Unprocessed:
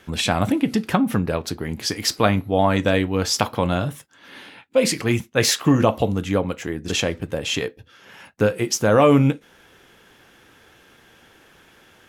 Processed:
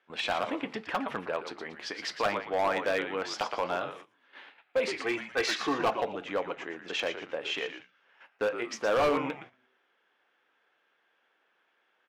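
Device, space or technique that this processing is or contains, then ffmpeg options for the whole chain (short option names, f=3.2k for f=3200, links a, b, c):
walkie-talkie: -filter_complex "[0:a]asettb=1/sr,asplit=3[a][b][c];[a]atrim=end=5.024[d];[b]atrim=start=5.02:end=6,asetpts=PTS-STARTPTS,afade=t=in:d=0.004:c=qsin,afade=t=out:st=0.976:d=0.004:c=qsin,aecho=1:1:2.6:0.66,atrim=end_sample=43218[e];[c]atrim=start=5.996[f];[d][e]acrossfade=d=0.004:c1=hsin:c2=qsin[g];[g][f]acrossfade=d=0.004:c1=qsin:c2=hsin,asplit=5[h][i][j][k][l];[i]adelay=116,afreqshift=-130,volume=-9dB[m];[j]adelay=232,afreqshift=-260,volume=-18.1dB[n];[k]adelay=348,afreqshift=-390,volume=-27.2dB[o];[l]adelay=464,afreqshift=-520,volume=-36.4dB[p];[h][m][n][o][p]amix=inputs=5:normalize=0,highpass=550,lowpass=2.8k,asoftclip=type=hard:threshold=-17dB,agate=range=-13dB:threshold=-43dB:ratio=16:detection=peak,volume=-4.5dB"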